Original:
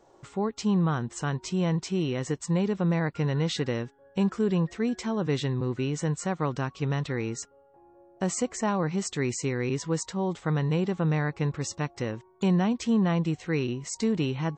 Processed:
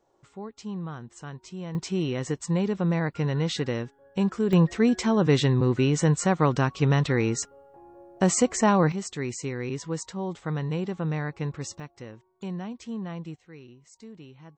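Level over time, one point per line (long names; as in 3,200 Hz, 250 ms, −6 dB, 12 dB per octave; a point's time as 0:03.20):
−10 dB
from 0:01.75 +0.5 dB
from 0:04.53 +6.5 dB
from 0:08.92 −3 dB
from 0:11.80 −10.5 dB
from 0:13.36 −19 dB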